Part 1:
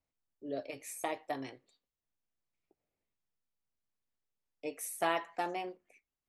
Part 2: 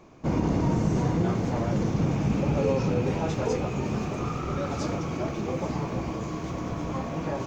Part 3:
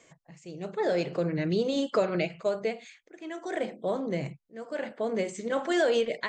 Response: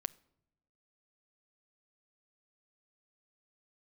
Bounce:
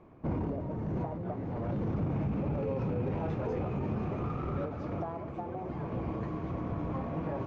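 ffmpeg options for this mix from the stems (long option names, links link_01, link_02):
-filter_complex "[0:a]lowpass=frequency=1200:width=0.5412,lowpass=frequency=1200:width=1.3066,acompressor=threshold=-37dB:ratio=3,volume=0.5dB,asplit=2[link_01][link_02];[1:a]alimiter=limit=-22dB:level=0:latency=1:release=15,volume=-3.5dB[link_03];[2:a]acompressor=threshold=-35dB:ratio=6,volume=-12.5dB[link_04];[link_02]apad=whole_len=329256[link_05];[link_03][link_05]sidechaincompress=threshold=-41dB:ratio=8:attack=16:release=781[link_06];[link_01][link_06][link_04]amix=inputs=3:normalize=0,highshelf=frequency=4000:gain=-10.5,adynamicsmooth=sensitivity=2.5:basefreq=2500,equalizer=frequency=94:width_type=o:width=0.42:gain=5"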